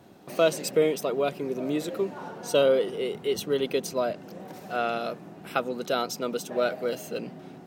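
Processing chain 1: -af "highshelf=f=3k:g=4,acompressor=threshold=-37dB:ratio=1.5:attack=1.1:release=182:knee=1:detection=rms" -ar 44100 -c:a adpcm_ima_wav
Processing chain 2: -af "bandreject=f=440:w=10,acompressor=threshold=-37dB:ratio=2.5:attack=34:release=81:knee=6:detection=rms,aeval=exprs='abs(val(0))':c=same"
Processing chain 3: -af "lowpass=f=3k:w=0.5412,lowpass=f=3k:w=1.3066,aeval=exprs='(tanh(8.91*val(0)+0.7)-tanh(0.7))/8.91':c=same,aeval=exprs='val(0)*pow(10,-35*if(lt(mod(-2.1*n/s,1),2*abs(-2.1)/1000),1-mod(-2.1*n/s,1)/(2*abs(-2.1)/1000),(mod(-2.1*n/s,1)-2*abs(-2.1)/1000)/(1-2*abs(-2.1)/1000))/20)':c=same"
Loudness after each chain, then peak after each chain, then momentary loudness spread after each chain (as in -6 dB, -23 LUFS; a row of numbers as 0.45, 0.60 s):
-34.5, -40.5, -39.5 LUFS; -18.0, -17.0, -15.5 dBFS; 9, 6, 17 LU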